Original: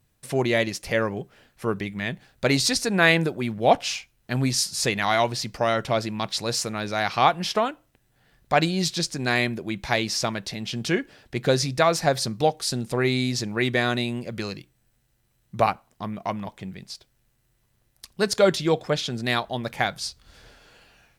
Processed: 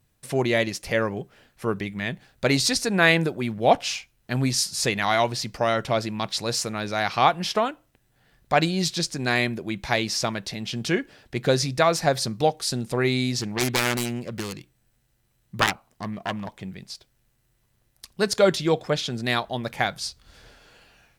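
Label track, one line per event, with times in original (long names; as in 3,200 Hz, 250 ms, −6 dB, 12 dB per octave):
13.410000	16.520000	phase distortion by the signal itself depth 0.68 ms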